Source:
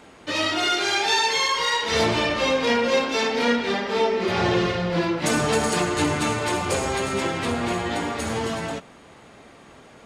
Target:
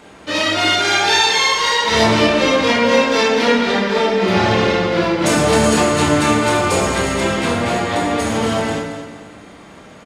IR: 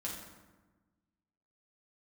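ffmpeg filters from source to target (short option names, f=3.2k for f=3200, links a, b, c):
-filter_complex "[0:a]aecho=1:1:224|448|672|896:0.299|0.11|0.0409|0.0151,asplit=2[a][b];[1:a]atrim=start_sample=2205,afade=t=out:st=0.38:d=0.01,atrim=end_sample=17199,adelay=27[c];[b][c]afir=irnorm=-1:irlink=0,volume=-1dB[d];[a][d]amix=inputs=2:normalize=0,volume=4dB"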